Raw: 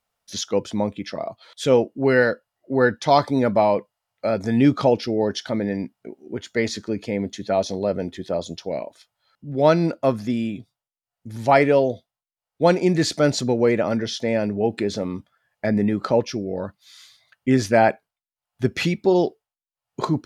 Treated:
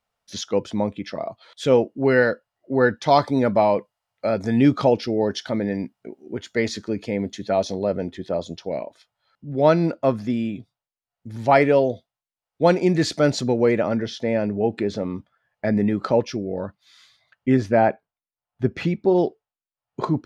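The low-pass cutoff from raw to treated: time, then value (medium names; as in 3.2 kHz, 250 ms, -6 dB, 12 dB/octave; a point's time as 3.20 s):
low-pass 6 dB/octave
4.6 kHz
from 3.06 s 7.8 kHz
from 7.74 s 3.6 kHz
from 11.51 s 5.7 kHz
from 13.86 s 2.5 kHz
from 15.67 s 5.4 kHz
from 16.36 s 2.4 kHz
from 17.57 s 1.2 kHz
from 19.18 s 2.1 kHz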